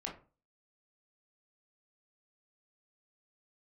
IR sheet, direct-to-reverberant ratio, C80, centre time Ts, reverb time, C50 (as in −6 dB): −2.0 dB, 15.0 dB, 24 ms, 0.35 s, 8.0 dB